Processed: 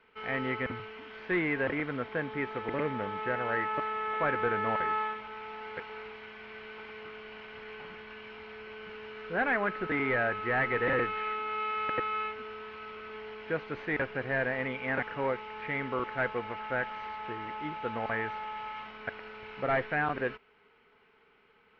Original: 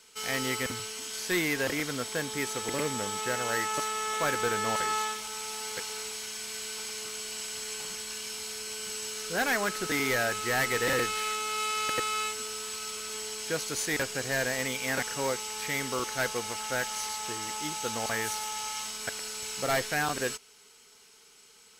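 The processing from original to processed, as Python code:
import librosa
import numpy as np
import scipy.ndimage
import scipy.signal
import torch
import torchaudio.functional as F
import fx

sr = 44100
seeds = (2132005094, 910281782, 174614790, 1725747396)

y = scipy.signal.sosfilt(scipy.signal.cheby2(4, 60, 7300.0, 'lowpass', fs=sr, output='sos'), x)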